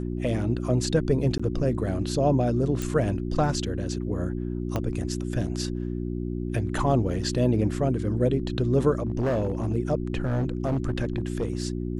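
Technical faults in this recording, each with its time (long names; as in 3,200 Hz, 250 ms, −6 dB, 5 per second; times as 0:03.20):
mains hum 60 Hz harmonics 6 −30 dBFS
0:01.38–0:01.40: drop-out 15 ms
0:02.82: click −15 dBFS
0:04.76: click −14 dBFS
0:09.05–0:09.73: clipping −21 dBFS
0:10.23–0:11.63: clipping −21 dBFS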